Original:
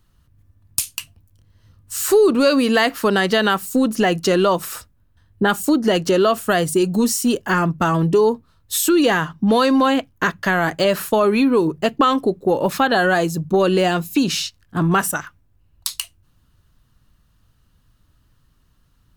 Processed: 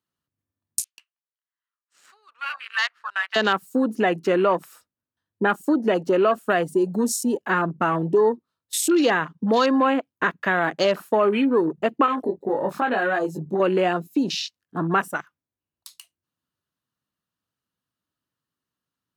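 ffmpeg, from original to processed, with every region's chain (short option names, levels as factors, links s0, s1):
-filter_complex "[0:a]asettb=1/sr,asplit=3[s0][s1][s2];[s0]atrim=end=0.844[s3];[s1]atrim=start=0.84:end=3.36,asetpts=PTS-STARTPTS,afade=t=in:d=0.004:c=qsin,afade=t=out:st=2.516:d=0.004:c=qsin,highpass=f=1200:w=0.5412,highpass=f=1200:w=1.3066,adynamicsmooth=sensitivity=1.5:basefreq=1900[s4];[s2]atrim=start=3.356[s5];[s3][s4]acrossfade=d=0.004:c1=hsin:c2=qsin[s6];[s6][s5]acrossfade=d=0.004:c1=qsin:c2=hsin,asettb=1/sr,asplit=3[s7][s8][s9];[s7]atrim=end=12.064[s10];[s8]atrim=start=12.06:end=13.6,asetpts=PTS-STARTPTS,afade=t=in:d=0.004:c=qsin,afade=t=out:st=1.536:d=0.004:c=qsin,acompressor=threshold=0.112:ratio=2.5:attack=3.2:release=140:knee=1:detection=peak,asplit=2[s11][s12];[s12]adelay=20,volume=0.75[s13];[s11][s13]amix=inputs=2:normalize=0,atrim=end_sample=67914[s14];[s9]atrim=start=13.596[s15];[s10][s14]acrossfade=d=0.004:c1=hsin:c2=qsin[s16];[s16][s15]acrossfade=d=0.004:c1=qsin:c2=hsin,afwtdn=0.0447,highpass=230,volume=0.75"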